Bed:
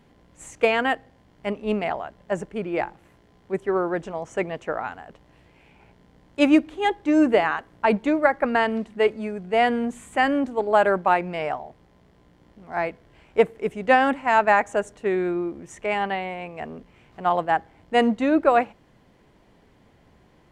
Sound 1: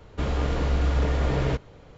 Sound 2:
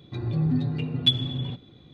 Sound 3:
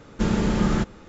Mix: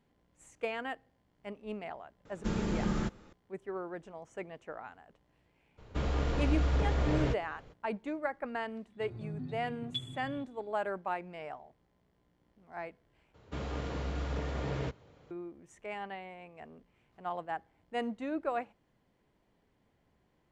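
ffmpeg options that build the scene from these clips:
-filter_complex "[1:a]asplit=2[a][b];[0:a]volume=-16dB[c];[b]highpass=75[d];[c]asplit=2[e][f];[e]atrim=end=13.344[g];[d]atrim=end=1.97,asetpts=PTS-STARTPTS,volume=-9.5dB[h];[f]atrim=start=15.306[i];[3:a]atrim=end=1.08,asetpts=PTS-STARTPTS,volume=-10.5dB,afade=t=in:d=0.004:c=hsin,afade=t=out:st=1.076:d=0.004:c=hsin,adelay=2250[j];[a]atrim=end=1.97,asetpts=PTS-STARTPTS,volume=-6dB,afade=t=in:d=0.02,afade=t=out:st=1.95:d=0.02,adelay=254457S[k];[2:a]atrim=end=1.93,asetpts=PTS-STARTPTS,volume=-17dB,afade=t=in:d=0.1,afade=t=out:st=1.83:d=0.1,adelay=8880[l];[g][h]acrossfade=d=0.004:c1=hsin:c2=hsin[m];[m][i]acrossfade=d=0.004:c1=hsin:c2=hsin[n];[n][j][k][l]amix=inputs=4:normalize=0"

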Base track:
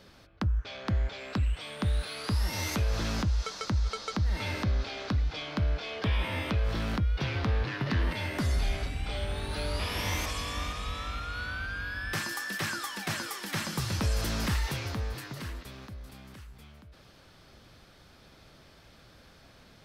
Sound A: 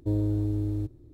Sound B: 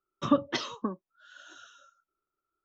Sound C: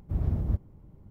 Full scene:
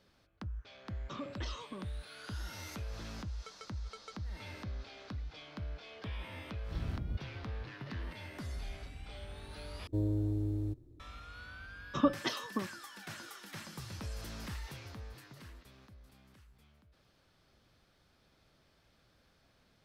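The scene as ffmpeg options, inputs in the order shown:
-filter_complex "[2:a]asplit=2[a][b];[0:a]volume=-13.5dB[c];[a]acompressor=threshold=-43dB:ratio=3:attack=2.1:release=43:knee=1:detection=peak[d];[c]asplit=2[e][f];[e]atrim=end=9.874[g];[1:a]atrim=end=1.13,asetpts=PTS-STARTPTS,volume=-6dB[h];[f]atrim=start=10.996[i];[d]atrim=end=2.64,asetpts=PTS-STARTPTS,volume=-1.5dB,afade=t=in:d=0.004:c=hsin,afade=t=out:st=2.636:d=0.004:c=hsin,adelay=880[j];[3:a]atrim=end=1.1,asetpts=PTS-STARTPTS,volume=-11dB,afade=t=in:d=0.004:c=hsin,afade=t=out:st=1.096:d=0.004:c=hsin,adelay=6610[k];[b]atrim=end=2.64,asetpts=PTS-STARTPTS,volume=-4dB,afade=t=in:d=0.004:c=hsin,afade=t=out:st=2.636:d=0.004:c=hsin,adelay=11720[l];[g][h]acrossfade=d=0.004:c1=hsin:c2=hsin[m];[m][i]acrossfade=d=0.004:c1=hsin:c2=hsin[n];[n][j][k][l]amix=inputs=4:normalize=0"

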